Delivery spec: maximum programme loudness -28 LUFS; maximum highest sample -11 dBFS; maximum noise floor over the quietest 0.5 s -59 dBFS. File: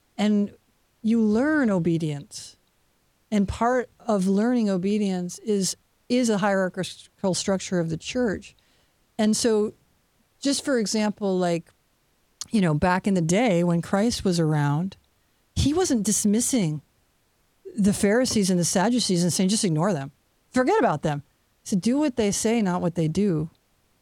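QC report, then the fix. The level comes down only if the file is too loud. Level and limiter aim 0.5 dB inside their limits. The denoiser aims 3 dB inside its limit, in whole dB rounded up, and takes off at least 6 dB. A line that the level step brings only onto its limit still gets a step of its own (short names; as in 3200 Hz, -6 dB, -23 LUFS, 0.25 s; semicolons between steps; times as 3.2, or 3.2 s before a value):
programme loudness -23.5 LUFS: fail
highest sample -9.0 dBFS: fail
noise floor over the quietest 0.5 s -66 dBFS: OK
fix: gain -5 dB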